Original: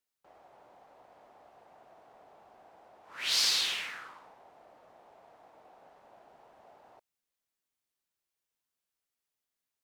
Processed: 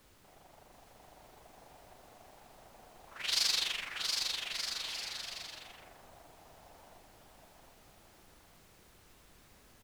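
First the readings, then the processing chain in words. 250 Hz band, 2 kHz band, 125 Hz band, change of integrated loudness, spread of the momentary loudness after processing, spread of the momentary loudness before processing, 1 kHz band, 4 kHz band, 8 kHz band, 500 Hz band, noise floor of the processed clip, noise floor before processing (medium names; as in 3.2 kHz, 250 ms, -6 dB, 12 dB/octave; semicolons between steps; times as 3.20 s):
+2.0 dB, -1.5 dB, no reading, -5.0 dB, 18 LU, 16 LU, -1.0 dB, -1.0 dB, -1.0 dB, -0.5 dB, -62 dBFS, under -85 dBFS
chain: AM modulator 24 Hz, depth 60%; added noise pink -63 dBFS; bouncing-ball echo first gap 720 ms, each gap 0.7×, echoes 5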